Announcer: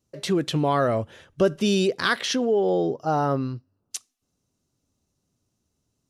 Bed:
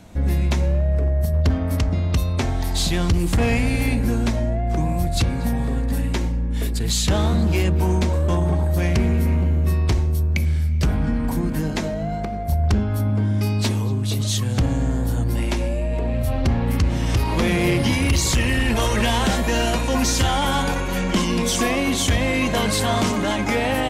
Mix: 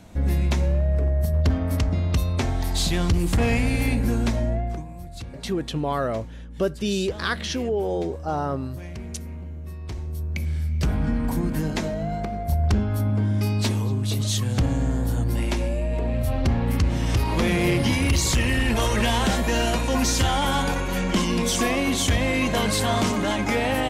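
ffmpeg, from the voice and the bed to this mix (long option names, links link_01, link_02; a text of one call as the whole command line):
ffmpeg -i stem1.wav -i stem2.wav -filter_complex "[0:a]adelay=5200,volume=-3.5dB[link_01];[1:a]volume=12.5dB,afade=type=out:start_time=4.57:duration=0.27:silence=0.188365,afade=type=in:start_time=9.8:duration=1.29:silence=0.188365[link_02];[link_01][link_02]amix=inputs=2:normalize=0" out.wav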